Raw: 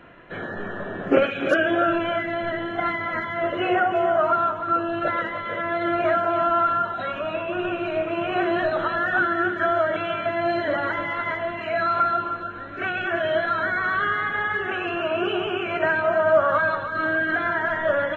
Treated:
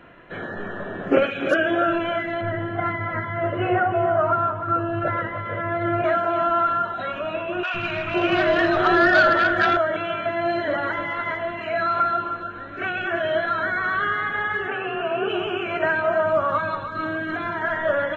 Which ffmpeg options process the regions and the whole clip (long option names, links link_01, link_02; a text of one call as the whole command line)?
ffmpeg -i in.wav -filter_complex "[0:a]asettb=1/sr,asplit=3[link_01][link_02][link_03];[link_01]atrim=end=2.414[link_04];[link_02]atrim=start=2.41:end=6.04,asetpts=PTS-STARTPTS,afade=type=in:duration=0.004:curve=qsin,afade=type=out:start_time=3.626:duration=0.004:curve=qsin,lowpass=2300,equalizer=frequency=110:width=2.3:gain=14.5[link_05];[link_03]atrim=start=6.036[link_06];[link_04][link_05]acrossfade=duration=0.004:curve1=hsin:curve2=qsin[link_07];[link_07][link_06]acrossfade=duration=0.004:curve1=qsin:curve2=hsin,asettb=1/sr,asplit=3[link_08][link_09][link_10];[link_08]atrim=end=7.634[link_11];[link_09]atrim=start=7.63:end=9.77,asetpts=PTS-STARTPTS,afade=type=in:duration=0.004:curve=qsin,afade=type=out:start_time=2.136:duration=0.004:curve=qsin,aeval=exprs='0.282*sin(PI/2*1.58*val(0)/0.282)':channel_layout=same,acrossover=split=250|840[link_12][link_13][link_14];[link_12]adelay=110[link_15];[link_13]adelay=510[link_16];[link_15][link_16][link_14]amix=inputs=3:normalize=0,atrim=end_sample=94374[link_17];[link_10]atrim=start=9.766[link_18];[link_11][link_17]acrossfade=duration=0.004:curve1=hsin:curve2=qsin[link_19];[link_19][link_18]acrossfade=duration=0.004:curve1=qsin:curve2=hsin,asettb=1/sr,asplit=3[link_20][link_21][link_22];[link_20]atrim=end=14.684[link_23];[link_21]atrim=start=14.68:end=15.3,asetpts=PTS-STARTPTS,afade=type=in:duration=0.004:curve=qsin,afade=type=out:start_time=0.616:duration=0.004:curve=qsin,lowpass=2700,afreqshift=26[link_24];[link_22]atrim=start=15.296[link_25];[link_23][link_24]acrossfade=duration=0.004:curve1=hsin:curve2=qsin[link_26];[link_26][link_25]acrossfade=duration=0.004:curve1=qsin:curve2=hsin,asettb=1/sr,asplit=3[link_27][link_28][link_29];[link_27]atrim=end=16.264[link_30];[link_28]atrim=start=16.26:end=17.62,asetpts=PTS-STARTPTS,afade=type=in:duration=0.004:curve=qsin,afade=type=out:start_time=1.356:duration=0.004:curve=qsin,equalizer=frequency=1500:width_type=o:width=0.4:gain=-9,aecho=1:1:0.8:0.34,atrim=end_sample=59976[link_31];[link_29]atrim=start=17.616[link_32];[link_30][link_31]acrossfade=duration=0.004:curve1=hsin:curve2=qsin[link_33];[link_33][link_32]acrossfade=duration=0.004:curve1=qsin:curve2=hsin" out.wav